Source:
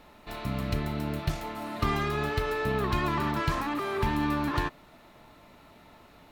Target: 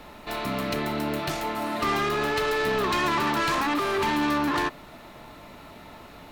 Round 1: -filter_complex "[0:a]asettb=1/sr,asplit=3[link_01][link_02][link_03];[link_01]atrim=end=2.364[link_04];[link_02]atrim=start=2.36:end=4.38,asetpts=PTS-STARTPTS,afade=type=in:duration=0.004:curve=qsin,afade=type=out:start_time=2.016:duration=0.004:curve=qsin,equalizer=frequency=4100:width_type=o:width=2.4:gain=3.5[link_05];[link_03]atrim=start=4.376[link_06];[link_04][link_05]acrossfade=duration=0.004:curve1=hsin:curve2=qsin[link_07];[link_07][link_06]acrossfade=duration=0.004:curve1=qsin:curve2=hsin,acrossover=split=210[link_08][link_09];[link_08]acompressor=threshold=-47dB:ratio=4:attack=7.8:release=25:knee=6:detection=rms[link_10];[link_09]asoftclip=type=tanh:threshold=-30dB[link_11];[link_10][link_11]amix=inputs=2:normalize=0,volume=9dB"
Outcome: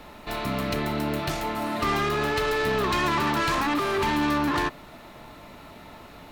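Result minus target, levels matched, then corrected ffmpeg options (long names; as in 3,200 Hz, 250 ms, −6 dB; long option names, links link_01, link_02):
downward compressor: peak gain reduction −7 dB
-filter_complex "[0:a]asettb=1/sr,asplit=3[link_01][link_02][link_03];[link_01]atrim=end=2.364[link_04];[link_02]atrim=start=2.36:end=4.38,asetpts=PTS-STARTPTS,afade=type=in:duration=0.004:curve=qsin,afade=type=out:start_time=2.016:duration=0.004:curve=qsin,equalizer=frequency=4100:width_type=o:width=2.4:gain=3.5[link_05];[link_03]atrim=start=4.376[link_06];[link_04][link_05]acrossfade=duration=0.004:curve1=hsin:curve2=qsin[link_07];[link_07][link_06]acrossfade=duration=0.004:curve1=qsin:curve2=hsin,acrossover=split=210[link_08][link_09];[link_08]acompressor=threshold=-56.5dB:ratio=4:attack=7.8:release=25:knee=6:detection=rms[link_10];[link_09]asoftclip=type=tanh:threshold=-30dB[link_11];[link_10][link_11]amix=inputs=2:normalize=0,volume=9dB"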